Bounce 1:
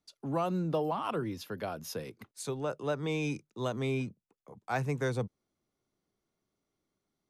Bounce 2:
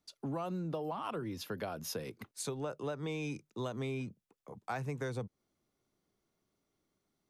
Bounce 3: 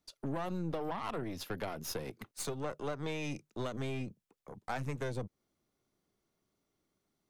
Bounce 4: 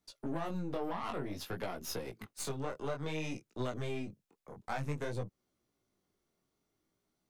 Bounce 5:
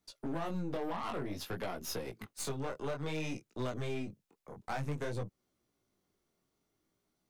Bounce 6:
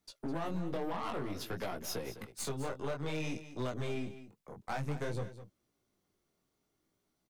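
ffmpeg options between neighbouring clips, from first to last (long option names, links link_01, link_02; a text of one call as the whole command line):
ffmpeg -i in.wav -af "acompressor=threshold=-37dB:ratio=6,volume=2dB" out.wav
ffmpeg -i in.wav -af "aeval=exprs='0.0596*(cos(1*acos(clip(val(0)/0.0596,-1,1)))-cos(1*PI/2))+0.00596*(cos(4*acos(clip(val(0)/0.0596,-1,1)))-cos(4*PI/2))+0.00335*(cos(8*acos(clip(val(0)/0.0596,-1,1)))-cos(8*PI/2))':channel_layout=same" out.wav
ffmpeg -i in.wav -af "flanger=delay=16:depth=6.7:speed=0.55,volume=2.5dB" out.wav
ffmpeg -i in.wav -af "asoftclip=type=hard:threshold=-30.5dB,volume=1dB" out.wav
ffmpeg -i in.wav -af "aecho=1:1:206:0.224" out.wav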